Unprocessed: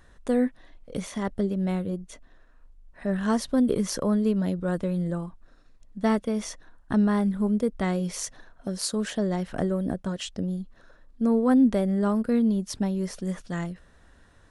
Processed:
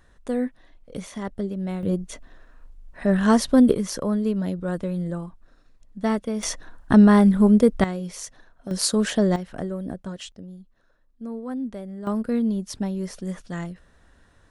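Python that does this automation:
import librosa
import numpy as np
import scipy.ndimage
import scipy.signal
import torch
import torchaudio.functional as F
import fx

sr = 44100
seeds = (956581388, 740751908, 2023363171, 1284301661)

y = fx.gain(x, sr, db=fx.steps((0.0, -2.0), (1.83, 7.0), (3.72, 0.0), (6.43, 9.0), (7.84, -3.0), (8.71, 6.5), (9.36, -3.5), (10.32, -11.0), (12.07, -0.5)))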